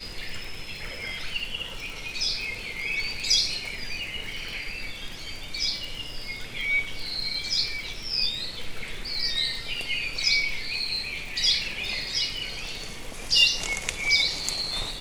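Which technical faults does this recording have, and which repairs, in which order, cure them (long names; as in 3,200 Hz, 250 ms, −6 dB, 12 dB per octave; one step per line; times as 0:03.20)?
surface crackle 55 per second −32 dBFS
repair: click removal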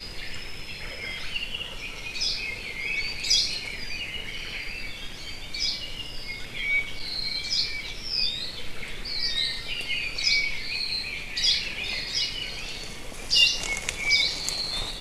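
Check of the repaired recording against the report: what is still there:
none of them is left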